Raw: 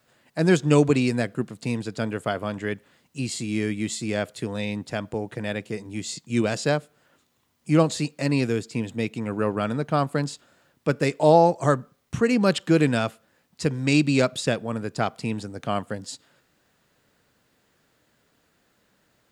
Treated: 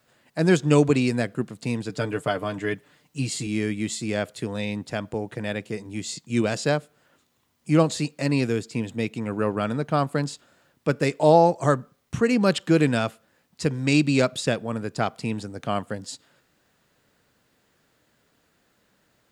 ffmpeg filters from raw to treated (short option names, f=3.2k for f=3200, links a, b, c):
-filter_complex "[0:a]asettb=1/sr,asplit=3[a][b][c];[a]atrim=end=1.894[d];[b]atrim=start=1.89:end=3.47,asetpts=PTS-STARTPTS,afade=t=in:d=0.004:c=qsin,afade=t=out:st=1.576:d=0.004:c=qsin,aecho=1:1:6.7:0.63,atrim=end_sample=69678[e];[c]atrim=start=3.466[f];[d][e]acrossfade=d=0.004:c1=hsin:c2=qsin[g];[g][f]acrossfade=d=0.004:c1=qsin:c2=hsin"